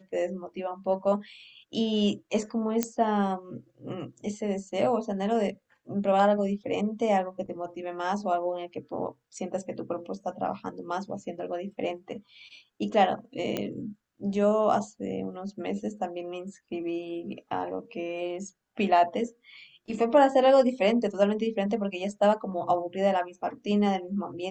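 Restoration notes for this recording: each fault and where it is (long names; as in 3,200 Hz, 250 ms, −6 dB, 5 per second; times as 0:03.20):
0:02.83: click −10 dBFS
0:13.57: click −15 dBFS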